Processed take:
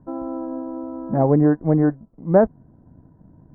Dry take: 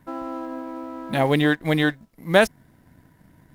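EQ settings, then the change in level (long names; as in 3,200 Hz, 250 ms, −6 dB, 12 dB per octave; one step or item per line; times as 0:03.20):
Gaussian smoothing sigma 8.8 samples
high-frequency loss of the air 280 metres
+5.5 dB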